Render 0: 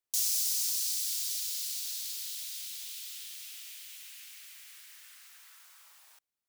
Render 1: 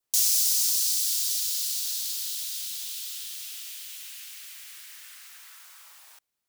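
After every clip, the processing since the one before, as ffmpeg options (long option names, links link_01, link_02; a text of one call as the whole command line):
ffmpeg -i in.wav -af "adynamicequalizer=threshold=0.00112:dfrequency=2200:dqfactor=2.4:tfrequency=2200:tqfactor=2.4:attack=5:release=100:ratio=0.375:range=2.5:mode=cutabove:tftype=bell,volume=7dB" out.wav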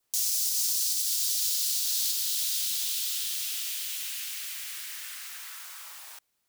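ffmpeg -i in.wav -filter_complex "[0:a]asplit=2[link_01][link_02];[link_02]acompressor=threshold=-34dB:ratio=6,volume=1dB[link_03];[link_01][link_03]amix=inputs=2:normalize=0,alimiter=limit=-17dB:level=0:latency=1:release=209" out.wav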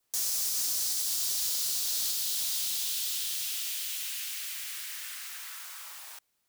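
ffmpeg -i in.wav -af "asoftclip=type=tanh:threshold=-24.5dB" out.wav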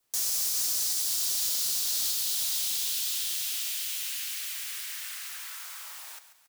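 ffmpeg -i in.wav -af "aecho=1:1:138|276|414|552:0.251|0.108|0.0464|0.02,volume=1.5dB" out.wav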